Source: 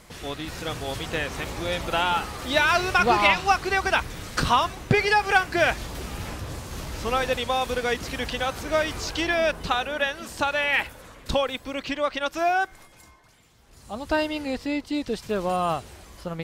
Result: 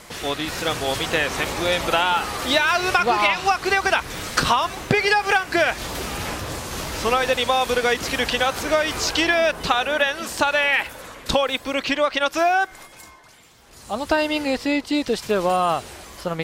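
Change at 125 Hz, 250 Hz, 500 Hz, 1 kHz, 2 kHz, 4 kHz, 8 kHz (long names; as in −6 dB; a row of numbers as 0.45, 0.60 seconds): 0.0, +4.0, +4.5, +3.0, +3.5, +5.5, +7.0 decibels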